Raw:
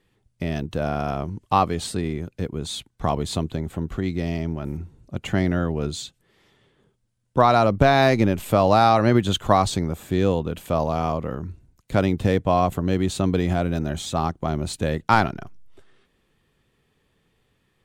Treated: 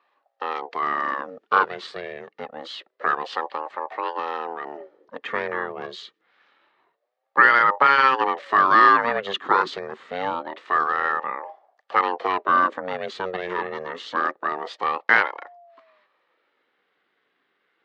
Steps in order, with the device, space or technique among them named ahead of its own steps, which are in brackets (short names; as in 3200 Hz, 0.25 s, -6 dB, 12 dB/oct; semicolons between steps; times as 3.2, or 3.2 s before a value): voice changer toy (ring modulator with a swept carrier 490 Hz, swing 45%, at 0.26 Hz; speaker cabinet 420–4400 Hz, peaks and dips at 670 Hz -6 dB, 1200 Hz +9 dB, 1800 Hz +10 dB)